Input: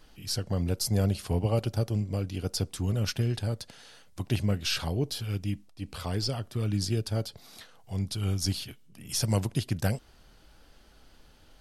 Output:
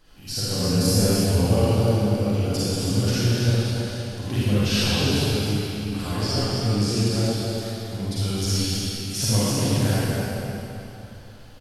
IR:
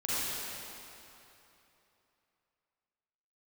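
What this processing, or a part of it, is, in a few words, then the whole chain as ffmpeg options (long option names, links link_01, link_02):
cave: -filter_complex "[0:a]aecho=1:1:269:0.398[link_01];[1:a]atrim=start_sample=2205[link_02];[link_01][link_02]afir=irnorm=-1:irlink=0,asettb=1/sr,asplit=3[link_03][link_04][link_05];[link_03]atrim=end=0.484[link_06];[link_04]atrim=start=0.48:end=1.24,asetpts=PTS-STARTPTS,afade=type=in:duration=0.004:curve=qsin,afade=type=out:start_time=0.756:duration=0.004:curve=qsin,asplit=2[link_07][link_08];[link_08]adelay=28,volume=-4dB[link_09];[link_07][link_09]amix=inputs=2:normalize=0,atrim=end_sample=33516[link_10];[link_05]atrim=start=1.236[link_11];[link_06][link_10]acrossfade=duration=0.004:curve1=hsin:curve2=qsin[link_12];[link_12][link_11]acrossfade=duration=0.004:curve1=qsin:curve2=hsin"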